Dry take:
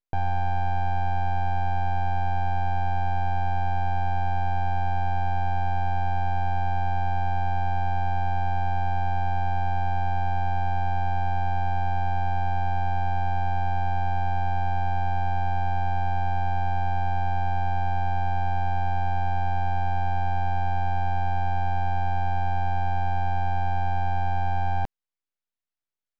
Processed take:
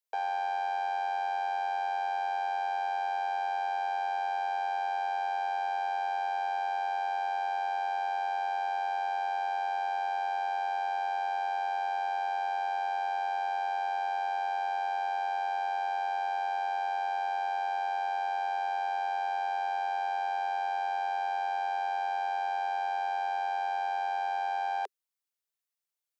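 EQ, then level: steep high-pass 400 Hz 96 dB/oct; high shelf 4200 Hz +9 dB; -2.0 dB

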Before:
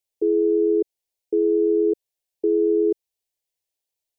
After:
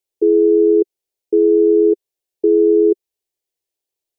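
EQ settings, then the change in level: bell 380 Hz +9 dB 0.66 oct; 0.0 dB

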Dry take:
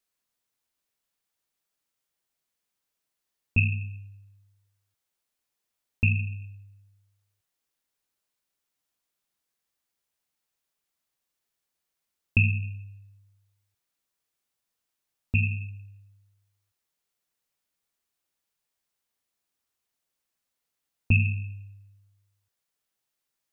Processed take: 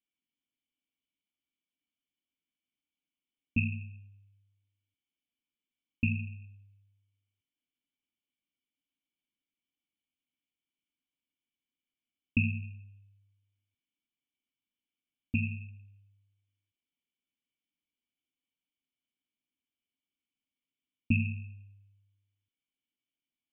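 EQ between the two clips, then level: vocal tract filter i; high shelf 2000 Hz +11.5 dB; dynamic EQ 200 Hz, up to +3 dB, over -45 dBFS, Q 1.5; +3.5 dB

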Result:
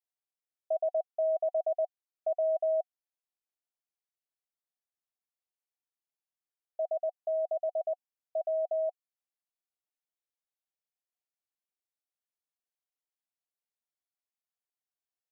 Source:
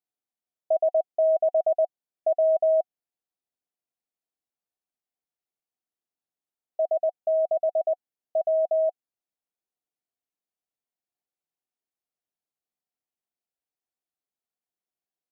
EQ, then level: HPF 460 Hz 12 dB/oct; -6.5 dB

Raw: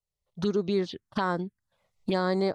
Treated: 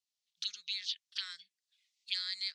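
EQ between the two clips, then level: inverse Chebyshev high-pass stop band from 900 Hz, stop band 50 dB; Chebyshev low-pass 5100 Hz, order 2; high shelf 3000 Hz +10 dB; 0.0 dB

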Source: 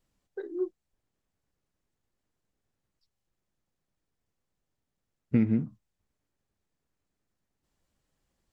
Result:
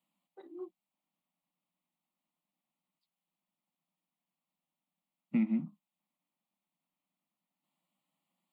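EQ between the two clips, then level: elliptic high-pass 170 Hz, stop band 40 dB; fixed phaser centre 1600 Hz, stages 6; 0.0 dB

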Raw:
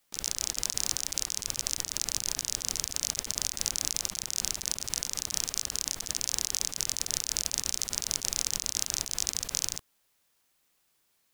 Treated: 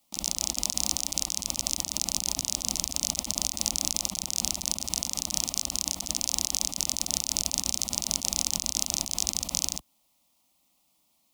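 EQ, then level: HPF 57 Hz; tone controls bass +6 dB, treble -4 dB; fixed phaser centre 430 Hz, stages 6; +6.5 dB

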